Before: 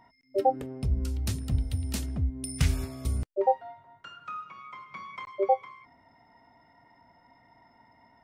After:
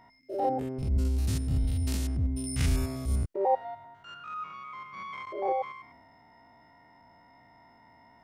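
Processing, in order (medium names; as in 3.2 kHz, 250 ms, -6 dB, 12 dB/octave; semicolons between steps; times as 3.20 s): spectrogram pixelated in time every 100 ms; transient shaper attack -7 dB, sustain +2 dB; trim +3.5 dB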